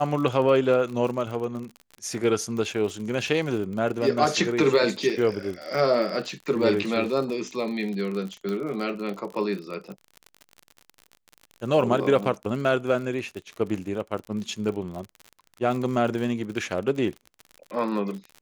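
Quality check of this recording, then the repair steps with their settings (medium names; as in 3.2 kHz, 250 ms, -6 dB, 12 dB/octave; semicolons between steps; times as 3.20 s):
crackle 50 per s -32 dBFS
8.49 s: pop -19 dBFS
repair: de-click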